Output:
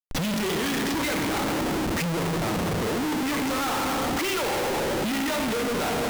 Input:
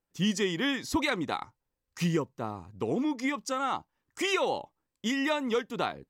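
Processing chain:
in parallel at −1.5 dB: upward compression, threshold −28 dBFS
on the sum: high-frequency loss of the air 130 metres
on a send at −2.5 dB: convolution reverb RT60 2.7 s, pre-delay 3 ms
on the sum: leveller curve on the samples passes 1
comparator with hysteresis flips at −39 dBFS
level −5 dB

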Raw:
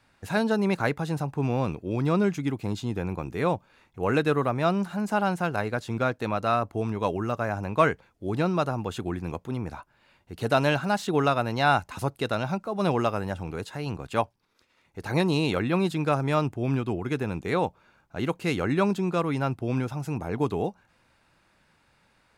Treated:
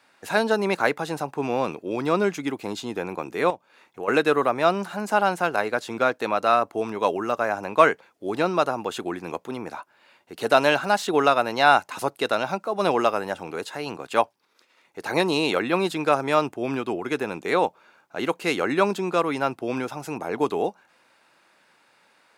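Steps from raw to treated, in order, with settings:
high-pass filter 340 Hz 12 dB per octave
0:03.50–0:04.08: downward compressor 3 to 1, threshold −38 dBFS, peak gain reduction 11 dB
level +5.5 dB

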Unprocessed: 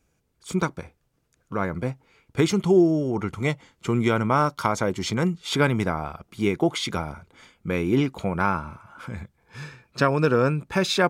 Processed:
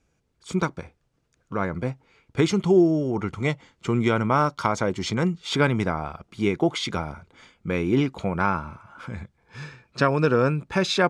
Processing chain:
low-pass filter 7,400 Hz 12 dB per octave

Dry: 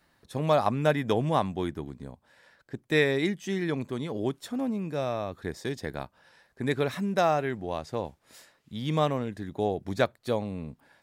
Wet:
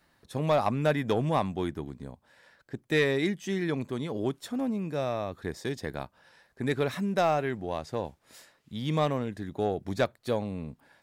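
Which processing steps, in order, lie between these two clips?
soft clipping −15 dBFS, distortion −19 dB

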